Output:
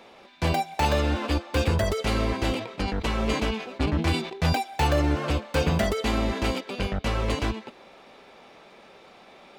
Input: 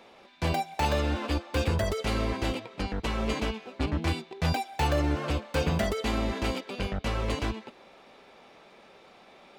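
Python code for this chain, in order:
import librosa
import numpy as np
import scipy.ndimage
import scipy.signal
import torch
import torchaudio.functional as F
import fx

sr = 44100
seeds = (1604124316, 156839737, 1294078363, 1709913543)

y = fx.sustainer(x, sr, db_per_s=85.0, at=(2.46, 4.61))
y = y * librosa.db_to_amplitude(3.5)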